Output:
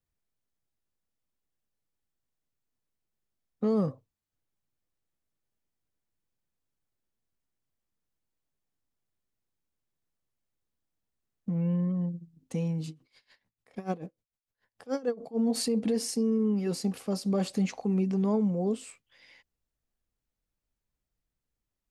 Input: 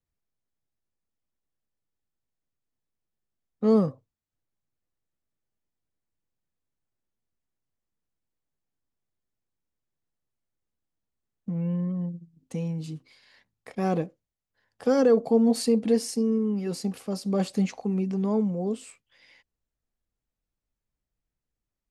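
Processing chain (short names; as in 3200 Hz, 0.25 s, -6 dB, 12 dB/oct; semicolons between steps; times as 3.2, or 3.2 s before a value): limiter -20 dBFS, peak gain reduction 8.5 dB; 12.88–15.39 dB-linear tremolo 6.8 Hz, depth 21 dB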